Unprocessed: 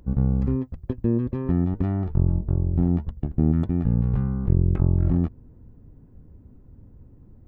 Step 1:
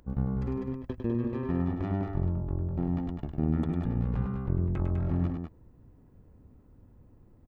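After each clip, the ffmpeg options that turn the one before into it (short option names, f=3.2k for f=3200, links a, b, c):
-af "lowshelf=f=460:g=-10.5,bandreject=f=1.5k:w=30,aecho=1:1:102|201.2:0.501|0.501"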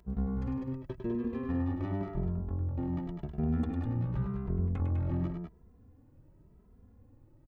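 -filter_complex "[0:a]asplit=2[a][b];[b]adelay=2.6,afreqshift=0.91[c];[a][c]amix=inputs=2:normalize=1"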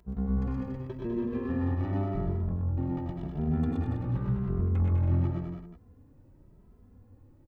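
-af "aecho=1:1:90.38|122.4|282.8:0.355|0.794|0.398"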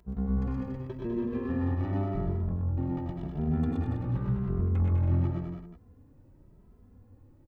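-af anull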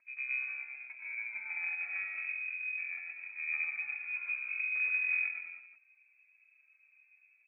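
-af "aeval=exprs='0.141*(cos(1*acos(clip(val(0)/0.141,-1,1)))-cos(1*PI/2))+0.0224*(cos(3*acos(clip(val(0)/0.141,-1,1)))-cos(3*PI/2))':c=same,lowpass=f=2.2k:t=q:w=0.5098,lowpass=f=2.2k:t=q:w=0.6013,lowpass=f=2.2k:t=q:w=0.9,lowpass=f=2.2k:t=q:w=2.563,afreqshift=-2600,volume=-5dB"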